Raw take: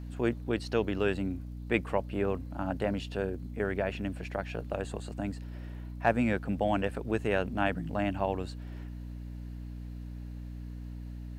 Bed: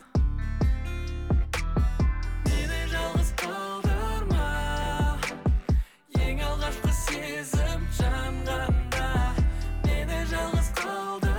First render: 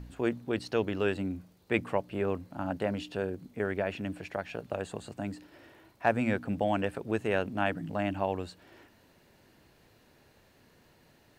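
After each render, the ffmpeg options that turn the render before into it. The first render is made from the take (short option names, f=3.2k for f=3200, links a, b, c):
-af "bandreject=f=60:t=h:w=4,bandreject=f=120:t=h:w=4,bandreject=f=180:t=h:w=4,bandreject=f=240:t=h:w=4,bandreject=f=300:t=h:w=4"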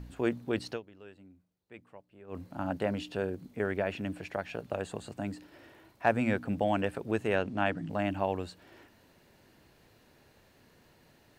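-filter_complex "[0:a]asettb=1/sr,asplit=3[a][b][c];[a]atrim=end=7.364[d];[b]atrim=start=7.36:end=7.9,asetpts=PTS-STARTPTS,afade=t=in:d=0.004:c=qsin,afade=t=out:st=0.536:d=0.004:c=qsin,lowpass=7.8k[e];[c]atrim=start=7.896[f];[d][e]acrossfade=d=0.004:c1=hsin:c2=qsin[g];[g][f]acrossfade=d=0.004:c1=qsin:c2=hsin,asplit=3[h][i][j];[h]atrim=end=0.83,asetpts=PTS-STARTPTS,afade=t=out:st=0.71:d=0.12:c=qua:silence=0.0794328[k];[i]atrim=start=0.83:end=2.26,asetpts=PTS-STARTPTS,volume=-22dB[l];[j]atrim=start=2.26,asetpts=PTS-STARTPTS,afade=t=in:d=0.12:c=qua:silence=0.0794328[m];[k][l][m]concat=n=3:v=0:a=1"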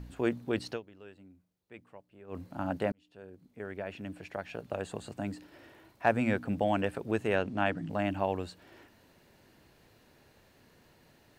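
-filter_complex "[0:a]asplit=2[a][b];[a]atrim=end=2.92,asetpts=PTS-STARTPTS,afade=t=out:st=2.916:d=0.004:c=hsin[c];[b]atrim=start=2.92,asetpts=PTS-STARTPTS,afade=t=in:d=2.12[d];[c][d]concat=n=2:v=0:a=1"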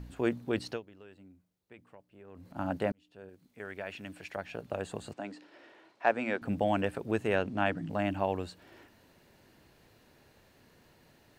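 -filter_complex "[0:a]asplit=3[a][b][c];[a]afade=t=out:st=0.91:d=0.02[d];[b]acompressor=threshold=-46dB:ratio=6:attack=3.2:release=140:knee=1:detection=peak,afade=t=in:st=0.91:d=0.02,afade=t=out:st=2.55:d=0.02[e];[c]afade=t=in:st=2.55:d=0.02[f];[d][e][f]amix=inputs=3:normalize=0,asettb=1/sr,asplit=3[g][h][i];[g]atrim=end=3.294[j];[h]atrim=start=3.29:end=4.36,asetpts=PTS-STARTPTS,afade=t=in:d=0.004:c=qsin,afade=t=out:st=1.066:d=0.004:c=qsin,tiltshelf=f=930:g=-5[k];[i]atrim=start=4.356[l];[j][k]acrossfade=d=0.004:c1=hsin:c2=qsin[m];[m][l]acrossfade=d=0.004:c1=qsin:c2=hsin,asettb=1/sr,asplit=3[n][o][p];[n]atrim=end=5.134[q];[o]atrim=start=5.13:end=6.42,asetpts=PTS-STARTPTS,afade=t=in:d=0.004:c=qsin,afade=t=out:st=1.286:d=0.004:c=qsin,highpass=330,lowpass=5.7k[r];[p]atrim=start=6.416[s];[q][r]acrossfade=d=0.004:c1=hsin:c2=qsin[t];[t][s]acrossfade=d=0.004:c1=qsin:c2=hsin"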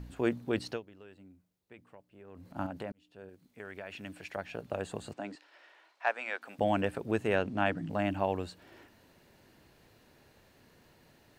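-filter_complex "[0:a]asettb=1/sr,asplit=3[a][b][c];[a]atrim=end=2.664[d];[b]atrim=start=2.66:end=4.04,asetpts=PTS-STARTPTS,afade=t=in:d=0.004:c=qsin,afade=t=out:st=1.376:d=0.004:c=qsin,acompressor=threshold=-39dB:ratio=2.5:attack=3.2:release=140:knee=1:detection=peak[e];[c]atrim=start=4.036[f];[d][e]acrossfade=d=0.004:c1=hsin:c2=qsin[g];[g][f]acrossfade=d=0.004:c1=qsin:c2=hsin,asettb=1/sr,asplit=3[h][i][j];[h]atrim=end=5.354[k];[i]atrim=start=5.35:end=6.59,asetpts=PTS-STARTPTS,afade=t=in:d=0.004:c=qsin,afade=t=out:st=1.236:d=0.004:c=qsin,highpass=820[l];[j]atrim=start=6.586[m];[k][l]acrossfade=d=0.004:c1=hsin:c2=qsin[n];[n][m]acrossfade=d=0.004:c1=qsin:c2=hsin"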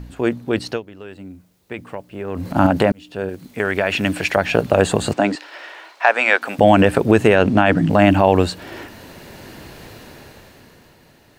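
-af "dynaudnorm=f=120:g=21:m=15dB,alimiter=level_in=10dB:limit=-1dB:release=50:level=0:latency=1"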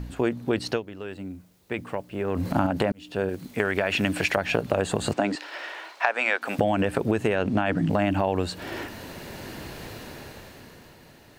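-af "acompressor=threshold=-20dB:ratio=6"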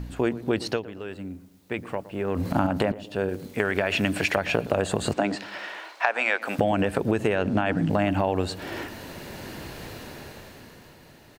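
-filter_complex "[0:a]asplit=2[a][b];[b]adelay=116,lowpass=f=960:p=1,volume=-15dB,asplit=2[c][d];[d]adelay=116,lowpass=f=960:p=1,volume=0.46,asplit=2[e][f];[f]adelay=116,lowpass=f=960:p=1,volume=0.46,asplit=2[g][h];[h]adelay=116,lowpass=f=960:p=1,volume=0.46[i];[a][c][e][g][i]amix=inputs=5:normalize=0"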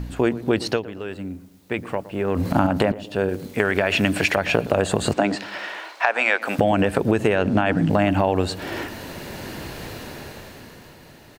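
-af "volume=4.5dB,alimiter=limit=-3dB:level=0:latency=1"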